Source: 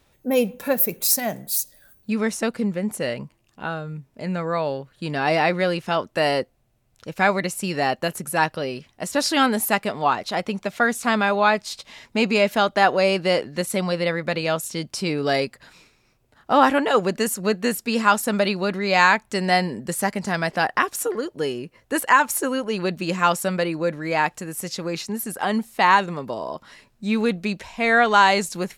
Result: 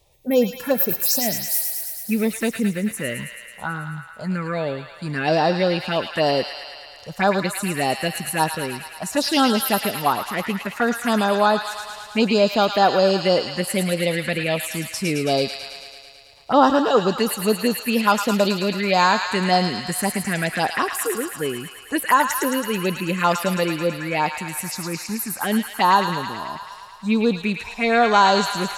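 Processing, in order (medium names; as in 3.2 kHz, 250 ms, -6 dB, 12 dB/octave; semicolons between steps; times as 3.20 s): touch-sensitive phaser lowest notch 250 Hz, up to 2.2 kHz, full sweep at -16 dBFS; feedback echo behind a high-pass 109 ms, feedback 74%, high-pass 1.4 kHz, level -4.5 dB; trim +3 dB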